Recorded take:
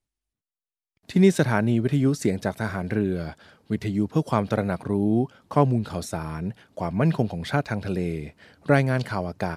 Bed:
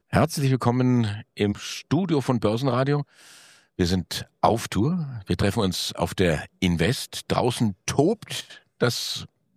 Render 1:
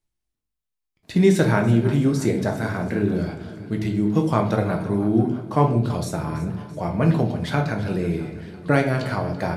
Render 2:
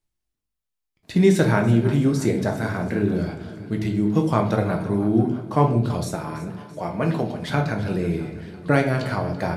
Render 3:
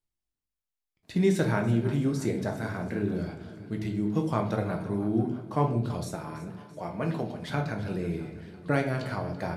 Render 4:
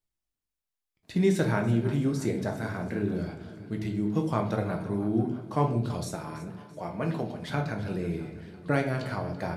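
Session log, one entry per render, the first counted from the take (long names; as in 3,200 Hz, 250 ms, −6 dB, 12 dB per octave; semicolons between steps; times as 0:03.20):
echo with a time of its own for lows and highs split 380 Hz, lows 571 ms, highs 334 ms, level −15.5 dB; rectangular room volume 86 cubic metres, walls mixed, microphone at 0.59 metres
0:06.15–0:07.50: high-pass filter 260 Hz 6 dB per octave
level −7.5 dB
0:05.42–0:06.43: parametric band 6,400 Hz +3 dB 2.1 octaves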